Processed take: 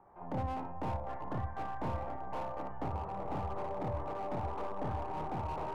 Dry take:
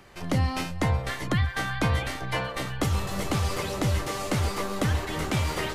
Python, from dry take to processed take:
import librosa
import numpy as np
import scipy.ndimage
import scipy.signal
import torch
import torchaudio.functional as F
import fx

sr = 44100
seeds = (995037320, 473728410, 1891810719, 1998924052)

y = fx.ladder_lowpass(x, sr, hz=990.0, resonance_pct=60)
y = fx.low_shelf(y, sr, hz=460.0, db=-7.0)
y = fx.room_early_taps(y, sr, ms=(27, 58), db=(-4.5, -6.0))
y = fx.rev_schroeder(y, sr, rt60_s=2.9, comb_ms=32, drr_db=13.0)
y = fx.slew_limit(y, sr, full_power_hz=11.0)
y = y * librosa.db_to_amplitude(1.0)